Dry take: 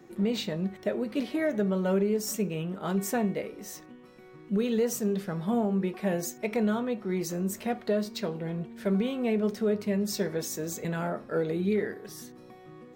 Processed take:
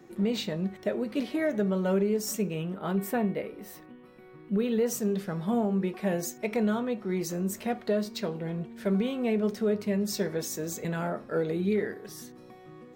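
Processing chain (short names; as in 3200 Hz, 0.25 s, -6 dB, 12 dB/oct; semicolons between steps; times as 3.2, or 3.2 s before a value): 2.74–4.86 bell 6400 Hz -13.5 dB 0.79 oct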